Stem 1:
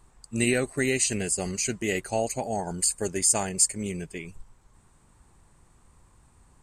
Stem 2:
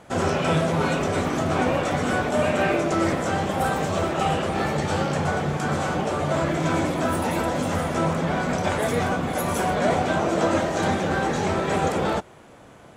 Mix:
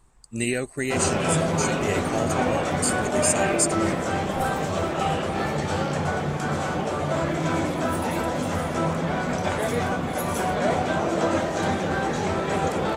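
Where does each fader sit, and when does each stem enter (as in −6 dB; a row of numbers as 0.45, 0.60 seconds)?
−1.5, −1.5 decibels; 0.00, 0.80 seconds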